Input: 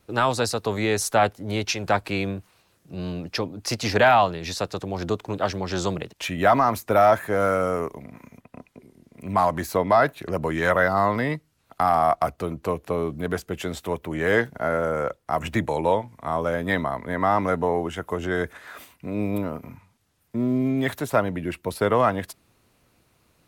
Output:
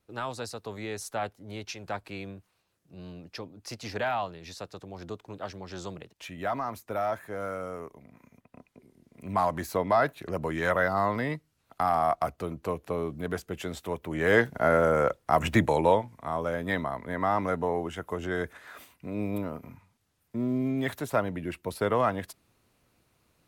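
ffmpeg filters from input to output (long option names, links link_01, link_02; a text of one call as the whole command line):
ffmpeg -i in.wav -af "volume=1.5dB,afade=type=in:start_time=7.95:duration=1.34:silence=0.421697,afade=type=in:start_time=14:duration=0.68:silence=0.446684,afade=type=out:start_time=15.62:duration=0.67:silence=0.446684" out.wav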